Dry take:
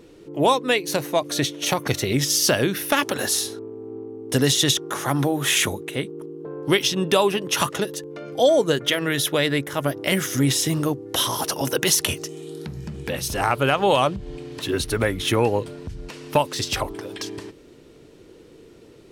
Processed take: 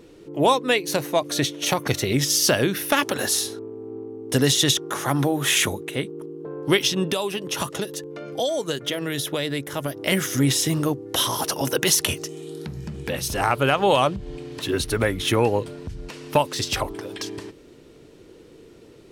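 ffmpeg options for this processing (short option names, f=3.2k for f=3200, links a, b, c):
-filter_complex "[0:a]asettb=1/sr,asplit=3[a][b][c];[a]atrim=end=7.114[d];[b]atrim=start=7.11:end=10.08,asetpts=PTS-STARTPTS,afade=t=in:d=0.004:c=qsin,afade=t=out:st=2.966:d=0.004:c=qsin,acrossover=split=960|2900[e][f][g];[e]acompressor=threshold=-25dB:ratio=4[h];[f]acompressor=threshold=-37dB:ratio=4[i];[g]acompressor=threshold=-28dB:ratio=4[j];[h][i][j]amix=inputs=3:normalize=0[k];[c]atrim=start=10.076[l];[d][k]acrossfade=d=0.004:c1=hsin:c2=qsin[m];[m][l]acrossfade=d=0.004:c1=qsin:c2=hsin"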